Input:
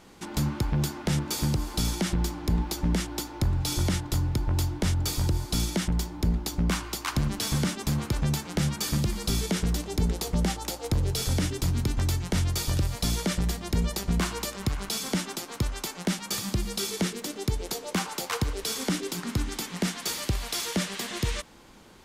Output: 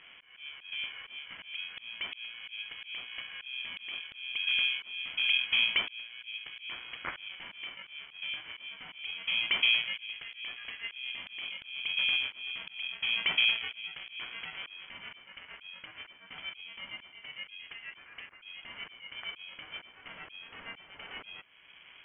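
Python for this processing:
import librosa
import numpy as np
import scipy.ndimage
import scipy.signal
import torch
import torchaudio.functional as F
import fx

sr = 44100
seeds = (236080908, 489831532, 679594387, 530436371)

y = fx.freq_invert(x, sr, carrier_hz=2900)
y = fx.auto_swell(y, sr, attack_ms=679.0)
y = fx.tilt_eq(y, sr, slope=1.5)
y = y * np.sin(2.0 * np.pi * 370.0 * np.arange(len(y)) / sr)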